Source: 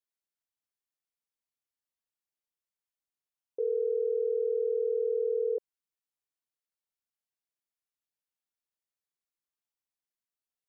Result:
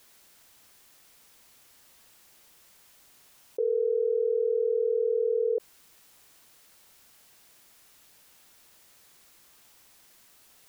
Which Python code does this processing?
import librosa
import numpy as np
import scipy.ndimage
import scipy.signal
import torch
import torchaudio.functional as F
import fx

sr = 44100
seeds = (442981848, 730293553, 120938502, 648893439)

y = fx.env_flatten(x, sr, amount_pct=50)
y = y * 10.0 ** (2.5 / 20.0)